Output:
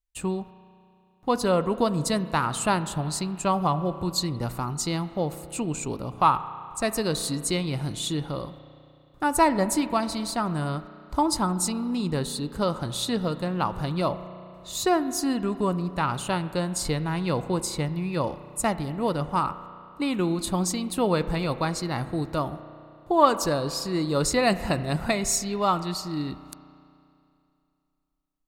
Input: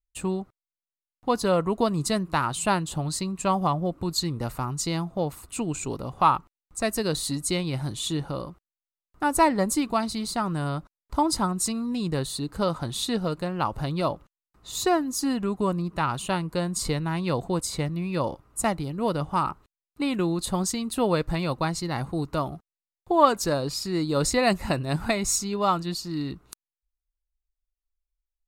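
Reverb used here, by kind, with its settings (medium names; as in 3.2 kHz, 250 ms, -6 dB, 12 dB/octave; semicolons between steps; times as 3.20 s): spring tank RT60 2.6 s, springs 33 ms, chirp 50 ms, DRR 12.5 dB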